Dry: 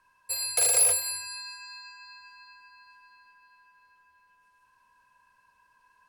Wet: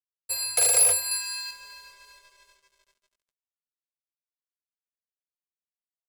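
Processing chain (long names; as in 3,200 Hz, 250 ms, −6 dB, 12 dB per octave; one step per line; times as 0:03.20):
dead-zone distortion −50 dBFS
0:01.11–0:01.51: tilt shelving filter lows −6 dB, about 870 Hz
level +2.5 dB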